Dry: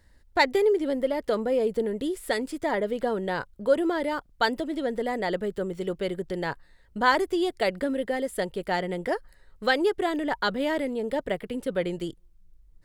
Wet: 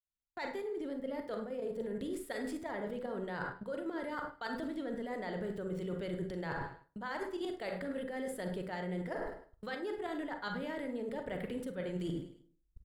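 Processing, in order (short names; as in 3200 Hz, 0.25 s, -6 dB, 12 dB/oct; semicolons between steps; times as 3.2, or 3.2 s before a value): opening faded in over 1.32 s; level quantiser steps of 12 dB; limiter -23 dBFS, peak gain reduction 9 dB; gate -48 dBFS, range -25 dB; on a send at -5 dB: reverb RT60 0.45 s, pre-delay 33 ms; on the sum: dynamic EQ 1400 Hz, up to +4 dB, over -47 dBFS, Q 0.83; feedback echo 0.104 s, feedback 37%, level -18 dB; reverse; compressor 16:1, threshold -43 dBFS, peak gain reduction 20.5 dB; reverse; bell 140 Hz +4 dB 1.7 oct; gain +6.5 dB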